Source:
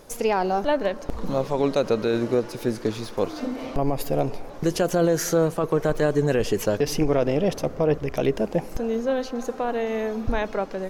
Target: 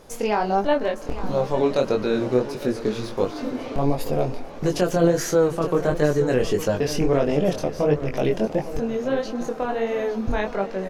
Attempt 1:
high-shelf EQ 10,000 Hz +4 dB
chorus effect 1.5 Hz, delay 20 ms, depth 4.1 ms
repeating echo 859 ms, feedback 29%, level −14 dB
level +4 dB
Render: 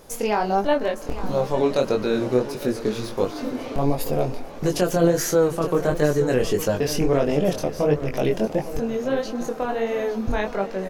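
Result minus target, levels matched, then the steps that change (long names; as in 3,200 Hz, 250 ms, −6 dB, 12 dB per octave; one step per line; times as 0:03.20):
8,000 Hz band +3.0 dB
change: high-shelf EQ 10,000 Hz −7 dB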